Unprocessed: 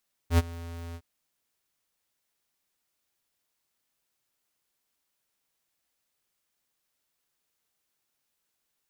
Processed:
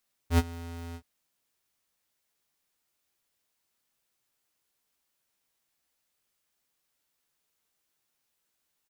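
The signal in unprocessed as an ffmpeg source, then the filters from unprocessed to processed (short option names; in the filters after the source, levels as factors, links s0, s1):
-f lavfi -i "aevalsrc='0.126*(2*lt(mod(84.5*t,1),0.5)-1)':d=0.71:s=44100,afade=t=in:d=0.082,afade=t=out:st=0.082:d=0.032:silence=0.0891,afade=t=out:st=0.65:d=0.06"
-filter_complex "[0:a]asplit=2[s0][s1];[s1]adelay=16,volume=0.376[s2];[s0][s2]amix=inputs=2:normalize=0"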